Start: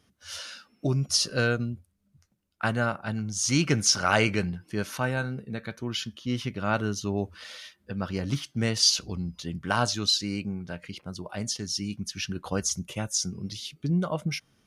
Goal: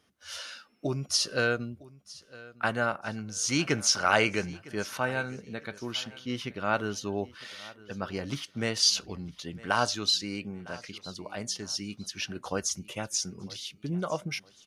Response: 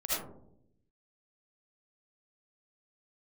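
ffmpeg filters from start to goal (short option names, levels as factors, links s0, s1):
-af "bass=f=250:g=-9,treble=f=4000:g=-3,aecho=1:1:957|1914:0.0944|0.0302"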